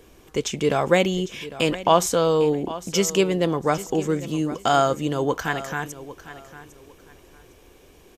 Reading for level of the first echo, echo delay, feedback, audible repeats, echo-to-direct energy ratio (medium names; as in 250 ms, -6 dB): -15.5 dB, 803 ms, 24%, 2, -15.5 dB